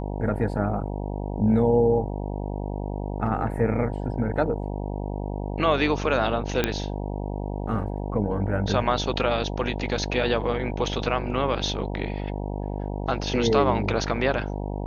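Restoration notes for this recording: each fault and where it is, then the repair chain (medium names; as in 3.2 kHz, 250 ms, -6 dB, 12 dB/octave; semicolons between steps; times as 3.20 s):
buzz 50 Hz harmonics 19 -30 dBFS
6.64 s: pop -7 dBFS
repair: de-click; de-hum 50 Hz, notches 19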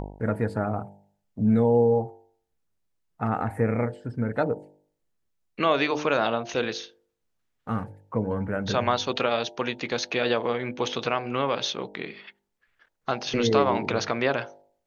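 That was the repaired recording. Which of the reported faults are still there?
nothing left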